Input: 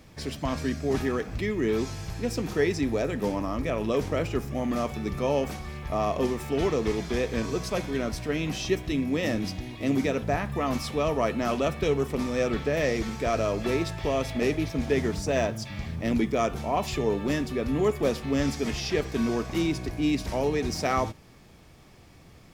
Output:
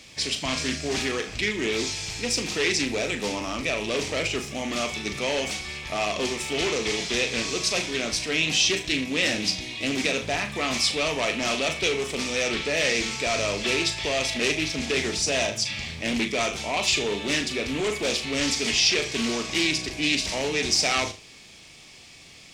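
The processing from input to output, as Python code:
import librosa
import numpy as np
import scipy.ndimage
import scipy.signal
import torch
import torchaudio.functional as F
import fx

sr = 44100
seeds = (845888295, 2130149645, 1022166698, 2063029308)

p1 = fx.low_shelf(x, sr, hz=170.0, db=-8.5)
p2 = p1 + fx.room_flutter(p1, sr, wall_m=6.6, rt60_s=0.27, dry=0)
p3 = np.clip(p2, -10.0 ** (-22.5 / 20.0), 10.0 ** (-22.5 / 20.0))
p4 = fx.band_shelf(p3, sr, hz=4400.0, db=14.0, octaves=2.4)
y = fx.doppler_dist(p4, sr, depth_ms=0.16)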